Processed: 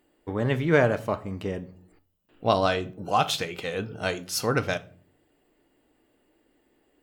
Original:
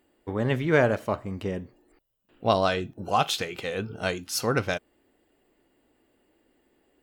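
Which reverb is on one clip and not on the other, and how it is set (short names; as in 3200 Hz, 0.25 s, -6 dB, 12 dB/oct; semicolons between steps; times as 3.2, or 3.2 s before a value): shoebox room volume 420 m³, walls furnished, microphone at 0.46 m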